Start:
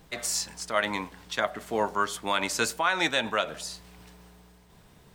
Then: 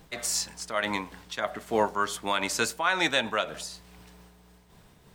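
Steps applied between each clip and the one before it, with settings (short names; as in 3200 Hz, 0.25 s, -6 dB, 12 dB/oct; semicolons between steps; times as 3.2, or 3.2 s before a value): noise-modulated level, depth 60%; gain +3 dB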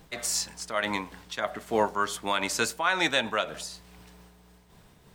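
nothing audible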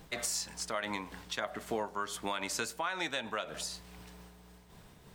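compressor 6:1, threshold -32 dBFS, peak gain reduction 12.5 dB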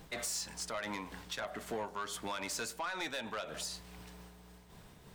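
soft clip -32 dBFS, distortion -11 dB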